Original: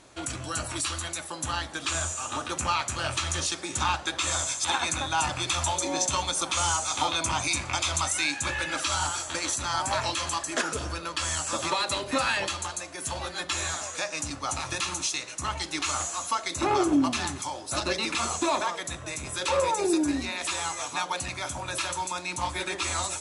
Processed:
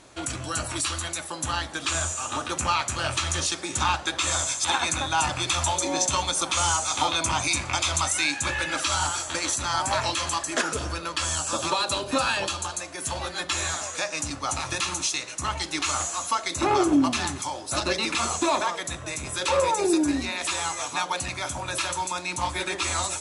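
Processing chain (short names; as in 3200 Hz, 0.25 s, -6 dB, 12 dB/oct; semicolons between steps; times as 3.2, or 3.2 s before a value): 11.25–12.73 bell 2000 Hz -12 dB 0.25 oct; gain +2.5 dB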